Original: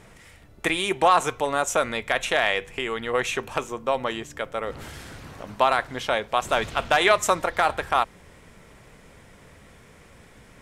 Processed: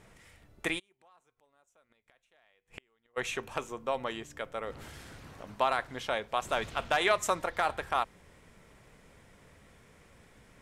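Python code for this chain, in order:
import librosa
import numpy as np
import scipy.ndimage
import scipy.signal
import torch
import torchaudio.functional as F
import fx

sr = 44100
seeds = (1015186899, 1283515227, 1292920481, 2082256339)

y = fx.gate_flip(x, sr, shuts_db=-21.0, range_db=-37, at=(0.78, 3.16), fade=0.02)
y = y * 10.0 ** (-8.0 / 20.0)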